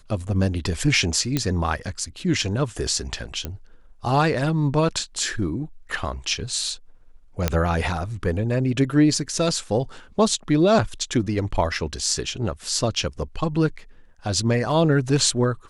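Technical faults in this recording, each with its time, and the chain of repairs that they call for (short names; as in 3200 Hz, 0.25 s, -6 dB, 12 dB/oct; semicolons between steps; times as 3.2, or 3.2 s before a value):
1.37 pop -8 dBFS
3.45 pop -14 dBFS
7.48 pop -5 dBFS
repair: de-click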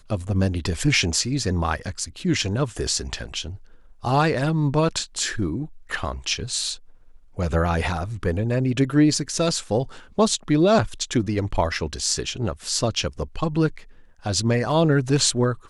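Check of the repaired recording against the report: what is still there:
none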